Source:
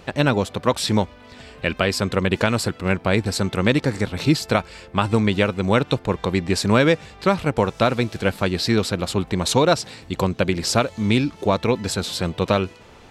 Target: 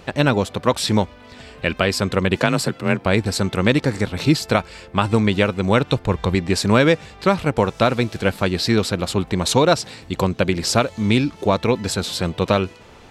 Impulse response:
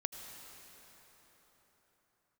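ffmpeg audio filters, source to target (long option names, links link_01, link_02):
-filter_complex "[0:a]asettb=1/sr,asplit=3[link_01][link_02][link_03];[link_01]atrim=end=2.404[link_04];[link_02]atrim=start=2.4:end=3.06,asetpts=PTS-STARTPTS,afade=type=in:duration=0.004:curve=qsin,afade=type=out:start_time=0.656:duration=0.004:curve=qsin,afreqshift=30[link_05];[link_03]atrim=start=3.056[link_06];[link_04][link_05]acrossfade=duration=0.004:curve1=hsin:curve2=qsin[link_07];[link_07][link_06]acrossfade=duration=0.004:curve1=qsin:curve2=hsin,asettb=1/sr,asplit=3[link_08][link_09][link_10];[link_08]atrim=end=5.694[link_11];[link_09]atrim=start=5.69:end=6.35,asetpts=PTS-STARTPTS,afade=type=in:duration=0.004:curve=qsin,afade=type=out:start_time=0.656:duration=0.004:curve=qsin,asubboost=boost=9:cutoff=160[link_12];[link_10]atrim=start=6.346[link_13];[link_11][link_12]acrossfade=duration=0.004:curve1=hsin:curve2=qsin[link_14];[link_14][link_13]acrossfade=duration=0.004:curve1=qsin:curve2=hsin,volume=1.5dB"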